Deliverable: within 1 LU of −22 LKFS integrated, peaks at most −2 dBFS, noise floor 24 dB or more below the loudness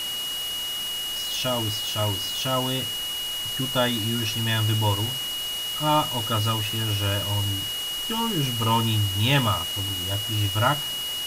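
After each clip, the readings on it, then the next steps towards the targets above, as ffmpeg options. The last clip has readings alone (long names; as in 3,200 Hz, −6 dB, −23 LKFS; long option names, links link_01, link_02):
interfering tone 2,900 Hz; level of the tone −28 dBFS; background noise floor −30 dBFS; target noise floor −49 dBFS; integrated loudness −24.5 LKFS; sample peak −8.0 dBFS; target loudness −22.0 LKFS
→ -af "bandreject=frequency=2900:width=30"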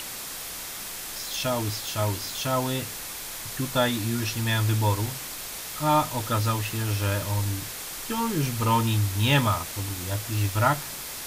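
interfering tone none found; background noise floor −36 dBFS; target noise floor −51 dBFS
→ -af "afftdn=noise_reduction=15:noise_floor=-36"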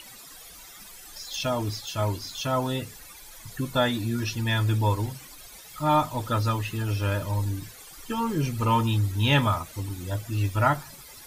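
background noise floor −46 dBFS; target noise floor −51 dBFS
→ -af "afftdn=noise_reduction=6:noise_floor=-46"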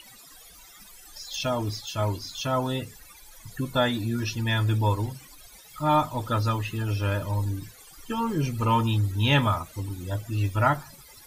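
background noise floor −50 dBFS; target noise floor −51 dBFS
→ -af "afftdn=noise_reduction=6:noise_floor=-50"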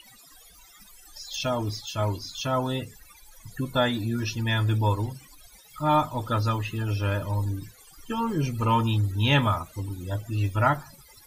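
background noise floor −53 dBFS; integrated loudness −27.0 LKFS; sample peak −9.0 dBFS; target loudness −22.0 LKFS
→ -af "volume=5dB"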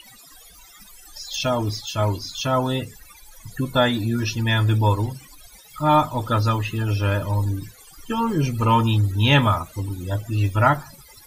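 integrated loudness −22.0 LKFS; sample peak −4.0 dBFS; background noise floor −48 dBFS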